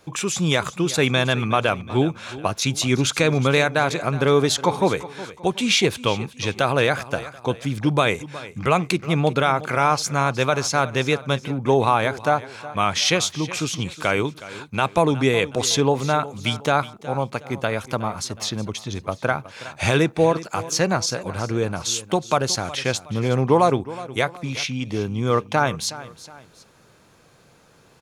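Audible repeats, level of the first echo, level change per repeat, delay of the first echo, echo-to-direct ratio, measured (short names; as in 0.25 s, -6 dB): 2, -16.5 dB, -8.0 dB, 0.367 s, -16.0 dB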